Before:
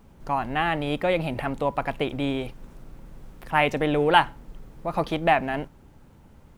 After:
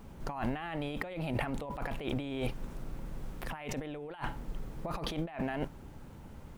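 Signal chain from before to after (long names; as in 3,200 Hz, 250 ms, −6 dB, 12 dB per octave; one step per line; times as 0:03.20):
compressor whose output falls as the input rises −33 dBFS, ratio −1
level −4 dB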